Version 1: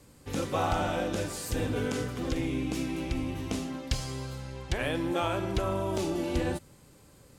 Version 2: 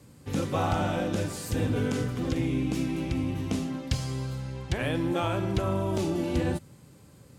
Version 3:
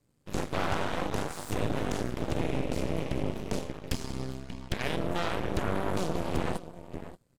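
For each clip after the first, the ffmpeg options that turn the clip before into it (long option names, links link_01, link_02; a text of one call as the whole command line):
ffmpeg -i in.wav -af "highpass=94,bass=frequency=250:gain=8,treble=frequency=4000:gain=-1" out.wav
ffmpeg -i in.wav -filter_complex "[0:a]asplit=2[link_01][link_02];[link_02]adelay=583.1,volume=-8dB,highshelf=frequency=4000:gain=-13.1[link_03];[link_01][link_03]amix=inputs=2:normalize=0,aeval=exprs='0.211*(cos(1*acos(clip(val(0)/0.211,-1,1)))-cos(1*PI/2))+0.075*(cos(6*acos(clip(val(0)/0.211,-1,1)))-cos(6*PI/2))+0.0237*(cos(7*acos(clip(val(0)/0.211,-1,1)))-cos(7*PI/2))':channel_layout=same,volume=-6.5dB" out.wav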